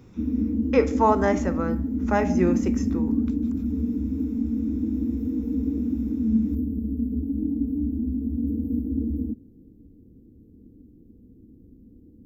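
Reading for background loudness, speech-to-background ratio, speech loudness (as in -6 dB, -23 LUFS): -26.5 LUFS, 1.0 dB, -25.5 LUFS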